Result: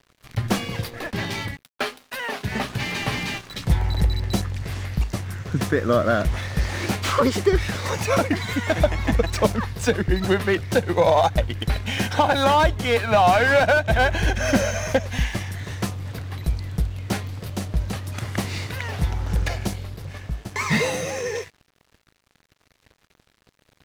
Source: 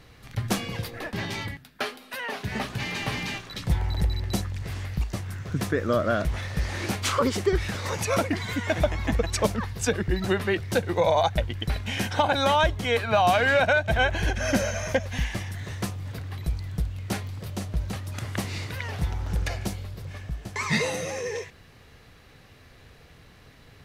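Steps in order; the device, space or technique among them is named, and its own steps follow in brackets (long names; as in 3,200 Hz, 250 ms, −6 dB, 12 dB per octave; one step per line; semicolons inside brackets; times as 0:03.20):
early transistor amplifier (dead-zone distortion −47 dBFS; slew-rate limiting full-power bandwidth 130 Hz)
level +5 dB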